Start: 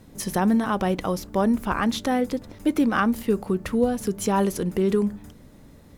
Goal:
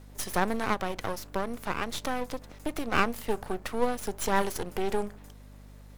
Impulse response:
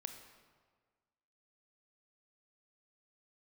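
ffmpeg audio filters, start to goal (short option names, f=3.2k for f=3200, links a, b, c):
-filter_complex "[0:a]highpass=440,asplit=3[a][b][c];[a]afade=t=out:st=0.73:d=0.02[d];[b]acompressor=threshold=-28dB:ratio=2.5,afade=t=in:st=0.73:d=0.02,afade=t=out:st=2.92:d=0.02[e];[c]afade=t=in:st=2.92:d=0.02[f];[d][e][f]amix=inputs=3:normalize=0,aeval=exprs='max(val(0),0)':c=same,aeval=exprs='val(0)+0.00316*(sin(2*PI*50*n/s)+sin(2*PI*2*50*n/s)/2+sin(2*PI*3*50*n/s)/3+sin(2*PI*4*50*n/s)/4+sin(2*PI*5*50*n/s)/5)':c=same,volume=2dB"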